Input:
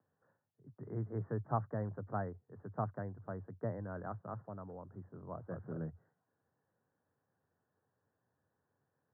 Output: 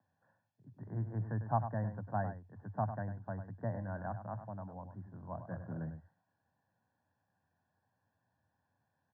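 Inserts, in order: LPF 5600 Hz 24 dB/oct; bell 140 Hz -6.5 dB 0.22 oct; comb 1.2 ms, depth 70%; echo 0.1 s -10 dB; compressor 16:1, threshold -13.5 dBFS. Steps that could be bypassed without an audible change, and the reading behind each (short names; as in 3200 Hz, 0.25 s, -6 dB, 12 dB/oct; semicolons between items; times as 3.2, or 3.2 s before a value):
LPF 5600 Hz: input band ends at 1600 Hz; compressor, threshold -13.5 dBFS: input peak -17.5 dBFS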